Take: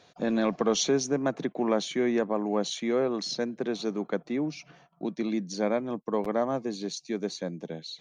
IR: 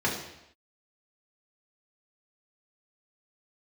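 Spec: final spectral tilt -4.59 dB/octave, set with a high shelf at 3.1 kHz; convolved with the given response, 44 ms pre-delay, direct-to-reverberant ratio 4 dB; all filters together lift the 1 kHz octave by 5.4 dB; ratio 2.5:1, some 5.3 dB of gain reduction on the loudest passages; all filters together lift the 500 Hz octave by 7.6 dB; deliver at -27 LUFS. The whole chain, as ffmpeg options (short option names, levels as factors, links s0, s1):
-filter_complex "[0:a]equalizer=f=500:t=o:g=8.5,equalizer=f=1000:t=o:g=4.5,highshelf=f=3100:g=-7.5,acompressor=threshold=0.0794:ratio=2.5,asplit=2[s0][s1];[1:a]atrim=start_sample=2205,adelay=44[s2];[s1][s2]afir=irnorm=-1:irlink=0,volume=0.168[s3];[s0][s3]amix=inputs=2:normalize=0,volume=0.841"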